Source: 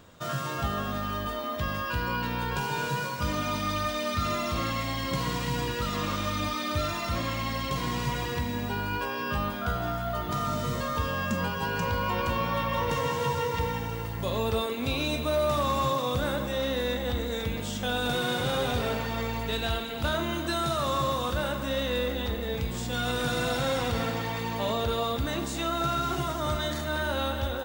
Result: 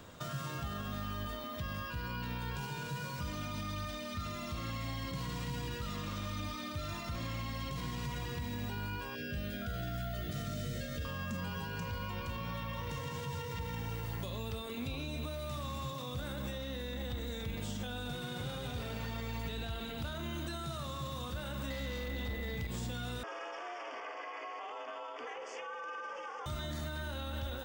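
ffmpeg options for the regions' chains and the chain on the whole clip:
ffmpeg -i in.wav -filter_complex "[0:a]asettb=1/sr,asplit=3[link_01][link_02][link_03];[link_01]atrim=end=9.154[link_04];[link_02]atrim=start=9.15:end=11.05,asetpts=PTS-STARTPTS,afade=type=in:duration=0.004:curve=qsin,afade=type=out:start_time=1.896:duration=0.004:curve=qsin,aeval=exprs='val(0)+0.02*sin(2*PI*930*n/s)':channel_layout=same,asuperstop=centerf=1000:order=8:qfactor=1.5[link_05];[link_03]atrim=start=11.046[link_06];[link_04][link_05]acrossfade=duration=0.004:curve1=hsin:curve2=qsin[link_07];[link_07][link_06]acrossfade=duration=0.004:curve1=qsin:curve2=hsin,asettb=1/sr,asplit=3[link_08][link_09][link_10];[link_08]atrim=end=21.704[link_11];[link_09]atrim=start=21.7:end=22.67,asetpts=PTS-STARTPTS,afade=type=in:duration=0.004:curve=qsin,afade=type=out:start_time=0.966:duration=0.004:curve=qsin,aeval=exprs='0.119*sin(PI/2*2*val(0)/0.119)':channel_layout=same,aeval=exprs='val(0)+0.0398*sin(2*PI*2000*n/s)':channel_layout=same[link_12];[link_10]atrim=start=22.666[link_13];[link_11][link_12]acrossfade=duration=0.004:curve1=hsin:curve2=qsin[link_14];[link_14][link_13]acrossfade=duration=0.004:curve1=qsin:curve2=hsin,asettb=1/sr,asplit=3[link_15][link_16][link_17];[link_15]atrim=end=23.234[link_18];[link_16]atrim=start=23.23:end=26.46,asetpts=PTS-STARTPTS,afade=type=in:duration=0.004:curve=qsin,afade=type=out:start_time=3.226:duration=0.004:curve=qsin,aeval=exprs='val(0)*sin(2*PI*180*n/s)':channel_layout=same,asuperstop=centerf=3900:order=4:qfactor=2.1,highpass=frequency=430:width=0.5412,highpass=frequency=430:width=1.3066,equalizer=frequency=530:width_type=q:width=4:gain=8,equalizer=frequency=740:width_type=q:width=4:gain=6,equalizer=frequency=1100:width_type=q:width=4:gain=10,equalizer=frequency=2000:width_type=q:width=4:gain=3,equalizer=frequency=4000:width_type=q:width=4:gain=-4,lowpass=frequency=5000:width=0.5412,lowpass=frequency=5000:width=1.3066[link_19];[link_17]atrim=start=26.456[link_20];[link_18][link_19]acrossfade=duration=0.004:curve1=hsin:curve2=qsin[link_21];[link_21][link_20]acrossfade=duration=0.004:curve1=qsin:curve2=hsin,alimiter=level_in=2.5dB:limit=-24dB:level=0:latency=1,volume=-2.5dB,acrossover=split=210|1800[link_22][link_23][link_24];[link_22]acompressor=threshold=-38dB:ratio=4[link_25];[link_23]acompressor=threshold=-47dB:ratio=4[link_26];[link_24]acompressor=threshold=-48dB:ratio=4[link_27];[link_25][link_26][link_27]amix=inputs=3:normalize=0,volume=1dB" out.wav

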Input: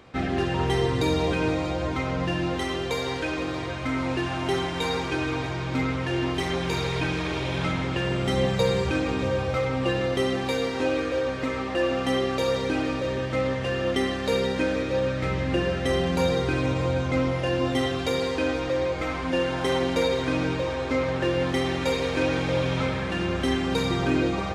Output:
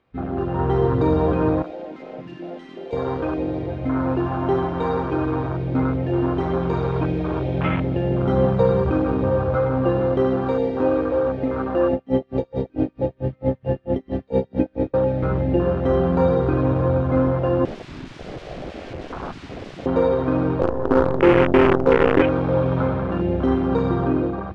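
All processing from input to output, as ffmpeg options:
ffmpeg -i in.wav -filter_complex "[0:a]asettb=1/sr,asplit=3[link_01][link_02][link_03];[link_01]atrim=end=1.624[link_04];[link_02]atrim=start=1.62:end=2.93,asetpts=PTS-STARTPTS,afade=type=in:duration=0.004:curve=qsin,afade=type=out:start_time=1.306:duration=0.004:curve=qsin,highpass=frequency=600:poles=1,asoftclip=type=hard:threshold=-33dB[link_05];[link_03]atrim=start=2.926[link_06];[link_04][link_05]acrossfade=duration=0.004:curve1=hsin:curve2=qsin[link_07];[link_07][link_06]acrossfade=duration=0.004:curve1=qsin:curve2=hsin,asettb=1/sr,asplit=3[link_08][link_09][link_10];[link_08]atrim=end=11.934[link_11];[link_09]atrim=start=11.93:end=14.94,asetpts=PTS-STARTPTS,afade=type=in:duration=0.004:curve=qsin,afade=type=out:start_time=3.006:duration=0.004:curve=qsin,lowshelf=frequency=370:gain=6,aeval=exprs='val(0)*pow(10,-30*(0.5-0.5*cos(2*PI*4.5*n/s))/20)':channel_layout=same[link_12];[link_10]atrim=start=14.936[link_13];[link_11][link_12]acrossfade=duration=0.004:curve1=hsin:curve2=qsin[link_14];[link_14][link_13]acrossfade=duration=0.004:curve1=qsin:curve2=hsin,asettb=1/sr,asplit=3[link_15][link_16][link_17];[link_15]atrim=end=17.654[link_18];[link_16]atrim=start=17.65:end=19.86,asetpts=PTS-STARTPTS,afade=type=in:duration=0.004:curve=qsin,afade=type=out:start_time=2.206:duration=0.004:curve=qsin,aeval=exprs='(mod(20*val(0)+1,2)-1)/20':channel_layout=same,lowpass=9600[link_19];[link_17]atrim=start=19.856[link_20];[link_18][link_19]acrossfade=duration=0.004:curve1=hsin:curve2=qsin[link_21];[link_21][link_20]acrossfade=duration=0.004:curve1=qsin:curve2=hsin,asettb=1/sr,asplit=3[link_22][link_23][link_24];[link_22]atrim=end=20.614[link_25];[link_23]atrim=start=20.61:end=22.22,asetpts=PTS-STARTPTS,afade=type=in:duration=0.004:curve=qsin,afade=type=out:start_time=1.606:duration=0.004:curve=qsin,lowpass=frequency=420:width_type=q:width=3.3,acrusher=bits=4:dc=4:mix=0:aa=0.000001[link_26];[link_24]atrim=start=22.216[link_27];[link_25][link_26]acrossfade=duration=0.004:curve1=hsin:curve2=qsin[link_28];[link_28][link_27]acrossfade=duration=0.004:curve1=qsin:curve2=hsin,afwtdn=0.0398,lowpass=3500,dynaudnorm=framelen=130:gausssize=9:maxgain=6dB" out.wav

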